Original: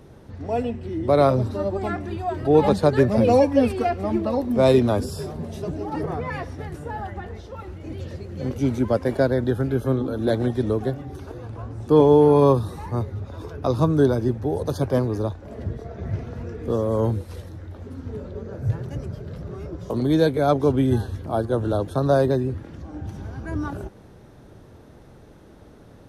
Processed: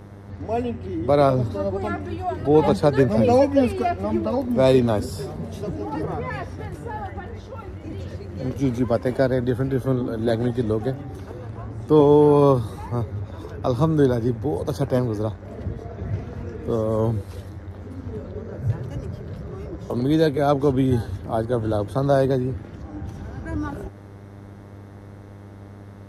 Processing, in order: buzz 100 Hz, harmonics 22, -42 dBFS -7 dB/oct

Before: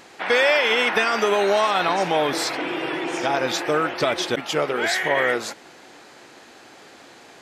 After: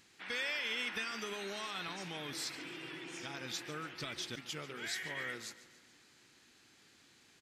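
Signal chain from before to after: passive tone stack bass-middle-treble 6-0-2; on a send: feedback echo 0.143 s, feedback 54%, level -16.5 dB; on the sum: gain +1.5 dB

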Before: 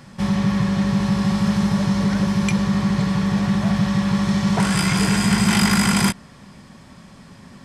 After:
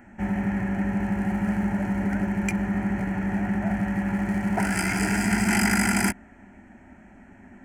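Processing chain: Wiener smoothing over 9 samples; fixed phaser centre 740 Hz, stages 8

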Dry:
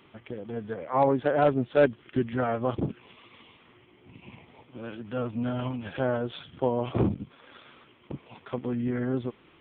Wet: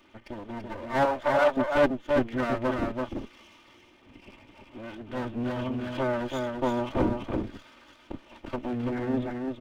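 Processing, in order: minimum comb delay 3.3 ms; 1.05–1.57 resonant low shelf 480 Hz -10.5 dB, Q 1.5; echo 0.335 s -4 dB

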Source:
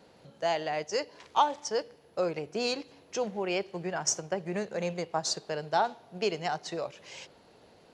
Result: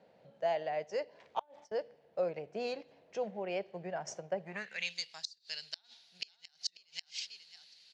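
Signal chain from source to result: band-pass sweep 610 Hz -> 4500 Hz, 4.4–4.94; 1.41–1.82 gate -48 dBFS, range -20 dB; band shelf 610 Hz -12 dB 2.6 oct; 5.65–6.65 echo throw 0.54 s, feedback 10%, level -1 dB; flipped gate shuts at -32 dBFS, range -33 dB; gain +10.5 dB

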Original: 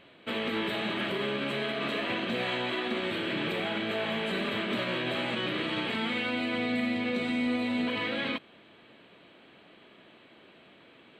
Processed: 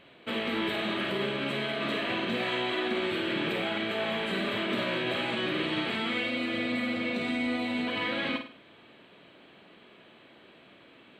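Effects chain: spectral repair 6.25–7.13, 500–1700 Hz after; flutter echo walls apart 8.8 m, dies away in 0.41 s

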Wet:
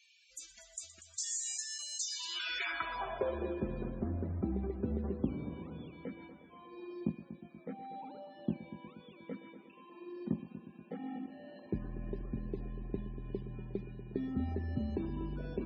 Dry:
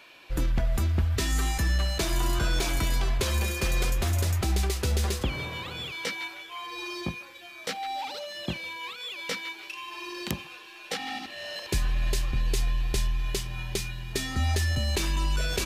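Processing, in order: band-pass sweep 7000 Hz -> 240 Hz, 2–3.65; multi-head echo 0.12 s, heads first and second, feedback 61%, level -15.5 dB; loudest bins only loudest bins 64; gain +3 dB

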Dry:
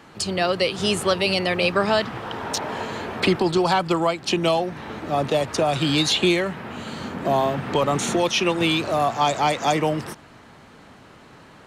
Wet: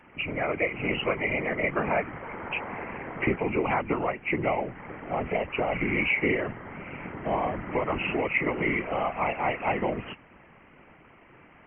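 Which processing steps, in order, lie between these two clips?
nonlinear frequency compression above 1900 Hz 4:1; whisperiser; gain -7 dB

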